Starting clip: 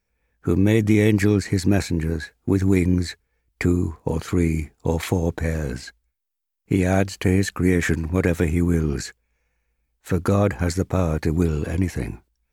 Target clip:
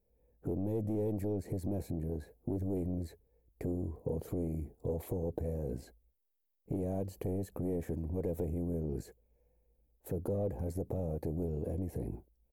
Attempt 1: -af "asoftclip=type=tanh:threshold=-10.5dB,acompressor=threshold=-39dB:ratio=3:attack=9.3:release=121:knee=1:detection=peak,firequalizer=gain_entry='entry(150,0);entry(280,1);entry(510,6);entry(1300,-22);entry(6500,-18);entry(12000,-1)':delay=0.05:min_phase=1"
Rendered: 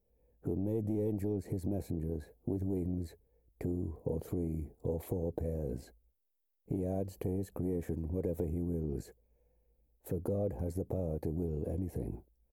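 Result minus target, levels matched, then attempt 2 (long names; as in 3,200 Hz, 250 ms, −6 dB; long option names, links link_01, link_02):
soft clipping: distortion −7 dB
-af "asoftclip=type=tanh:threshold=-17dB,acompressor=threshold=-39dB:ratio=3:attack=9.3:release=121:knee=1:detection=peak,firequalizer=gain_entry='entry(150,0);entry(280,1);entry(510,6);entry(1300,-22);entry(6500,-18);entry(12000,-1)':delay=0.05:min_phase=1"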